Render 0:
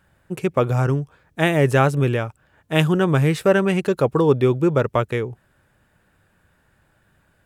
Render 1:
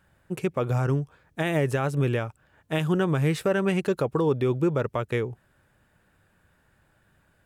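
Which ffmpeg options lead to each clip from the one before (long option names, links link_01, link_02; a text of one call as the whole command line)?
ffmpeg -i in.wav -af "alimiter=limit=-12dB:level=0:latency=1:release=148,volume=-3dB" out.wav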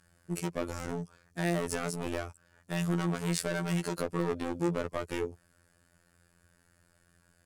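ffmpeg -i in.wav -af "superequalizer=9b=0.631:14b=3.16:15b=3.16:16b=3.16,volume=24.5dB,asoftclip=hard,volume=-24.5dB,afftfilt=real='hypot(re,im)*cos(PI*b)':imag='0':win_size=2048:overlap=0.75" out.wav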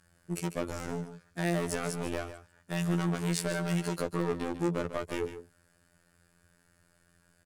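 ffmpeg -i in.wav -af "aecho=1:1:146:0.266" out.wav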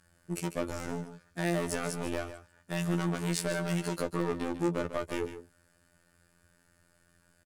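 ffmpeg -i in.wav -filter_complex "[0:a]asplit=2[link_01][link_02];[link_02]adelay=15,volume=-14dB[link_03];[link_01][link_03]amix=inputs=2:normalize=0" out.wav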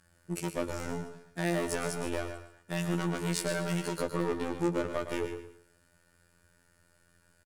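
ffmpeg -i in.wav -af "aecho=1:1:114|228|342:0.316|0.098|0.0304" out.wav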